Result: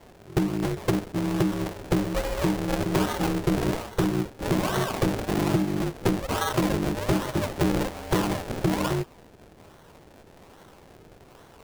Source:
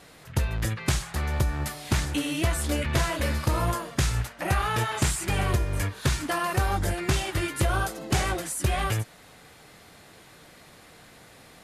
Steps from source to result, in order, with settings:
sample-and-hold swept by an LFO 35×, swing 100% 1.2 Hz
ring modulation 250 Hz
level +3.5 dB

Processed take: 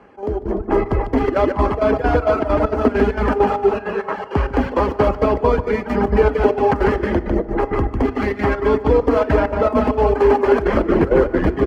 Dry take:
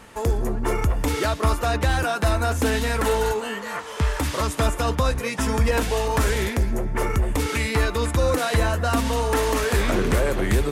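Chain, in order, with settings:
stylus tracing distortion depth 0.37 ms
repeating echo 137 ms, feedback 45%, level −3.5 dB
square-wave tremolo 4.8 Hz, depth 60%, duty 70%
reverb reduction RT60 0.89 s
automatic gain control gain up to 9.5 dB
high-pass filter 65 Hz
three-way crossover with the lows and the highs turned down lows −21 dB, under 300 Hz, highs −15 dB, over 4,900 Hz
notch filter 4,000 Hz, Q 5.5
feedback delay network reverb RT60 1.6 s, low-frequency decay 0.75×, high-frequency decay 0.35×, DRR 14.5 dB
wrong playback speed 48 kHz file played as 44.1 kHz
spectral tilt −4.5 dB per octave
level −1 dB

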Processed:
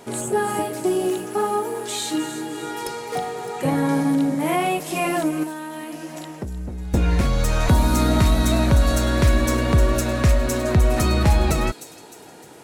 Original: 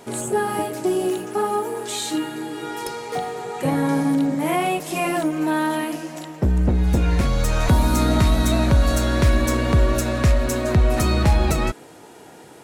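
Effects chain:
0:05.43–0:06.94: downward compressor 10 to 1, threshold −28 dBFS, peak gain reduction 14 dB
delay with a high-pass on its return 306 ms, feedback 49%, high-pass 5,300 Hz, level −7.5 dB

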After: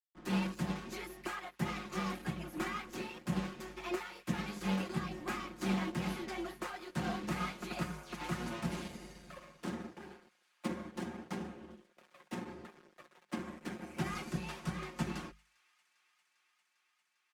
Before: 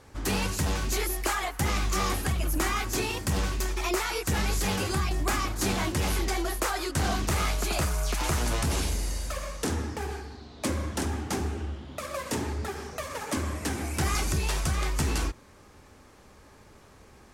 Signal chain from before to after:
dead-zone distortion −45 dBFS
low shelf with overshoot 280 Hz +13 dB, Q 1.5
dead-zone distortion −31.5 dBFS
three-way crossover with the lows and the highs turned down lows −23 dB, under 240 Hz, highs −12 dB, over 3,700 Hz
mains-hum notches 50/100/150/200 Hz
comb filter 5.6 ms, depth 67%
on a send: delay with a high-pass on its return 400 ms, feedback 82%, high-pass 1,700 Hz, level −20 dB
on the sum: expander for the loud parts 1.5 to 1, over −43 dBFS
level −6 dB

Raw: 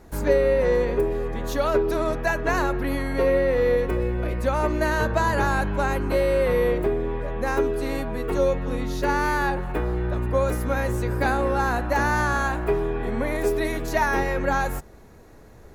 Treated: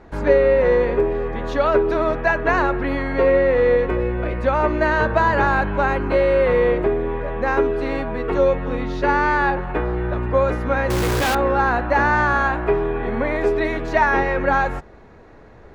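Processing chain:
low-pass filter 2,800 Hz 12 dB per octave
low-shelf EQ 350 Hz −5.5 dB
0:10.90–0:11.35: log-companded quantiser 2 bits
level +6.5 dB

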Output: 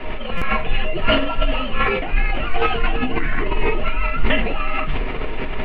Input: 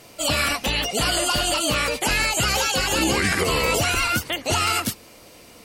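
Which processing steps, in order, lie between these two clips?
linear delta modulator 64 kbit/s, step −29.5 dBFS
Butterworth low-pass 2,900 Hz 36 dB per octave
low-shelf EQ 97 Hz +11 dB
mains-hum notches 60/120/180 Hz
reversed playback
downward compressor 10 to 1, threshold −29 dBFS, peak gain reduction 14.5 dB
reversed playback
mains hum 60 Hz, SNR 11 dB
frequency shifter −72 Hz
on a send at −1 dB: convolution reverb RT60 0.25 s, pre-delay 3 ms
on the sum: buffer that repeats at 0:00.37, samples 256, times 7
level that may fall only so fast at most 37 dB per second
level +3.5 dB

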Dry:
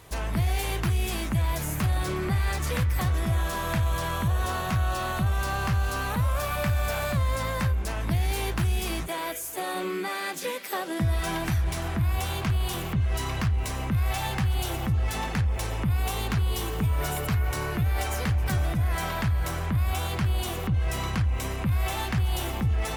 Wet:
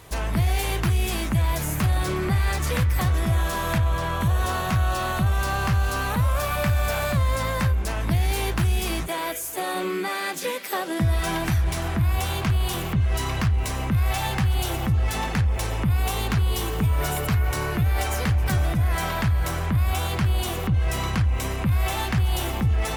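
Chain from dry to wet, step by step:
0:03.78–0:04.21: high-shelf EQ 4,300 Hz −9 dB
level +3.5 dB

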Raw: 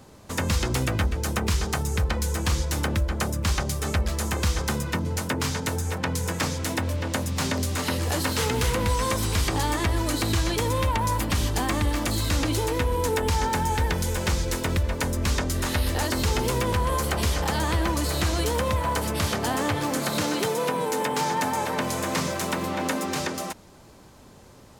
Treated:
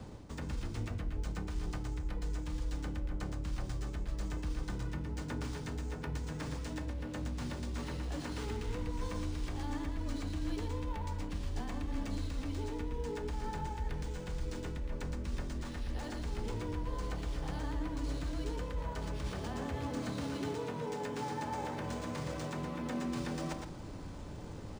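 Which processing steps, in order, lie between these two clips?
low-shelf EQ 330 Hz +9.5 dB
reversed playback
downward compressor 5 to 1, threshold −37 dBFS, peak gain reduction 22.5 dB
reversed playback
frequency shifter −21 Hz
on a send: single-tap delay 115 ms −5.5 dB
on the sum: feedback delay network reverb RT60 0.8 s, low-frequency decay 1.4×, high-frequency decay 0.75×, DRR 10.5 dB
linearly interpolated sample-rate reduction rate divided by 3×
level −2 dB

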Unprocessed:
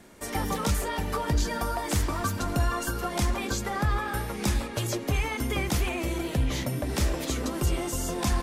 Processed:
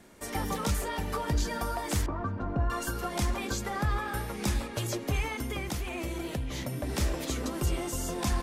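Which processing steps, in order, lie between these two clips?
0:02.06–0:02.70: low-pass filter 1,200 Hz 12 dB per octave
0:05.27–0:06.83: downward compressor, threshold −27 dBFS, peak gain reduction 6.5 dB
level −3 dB

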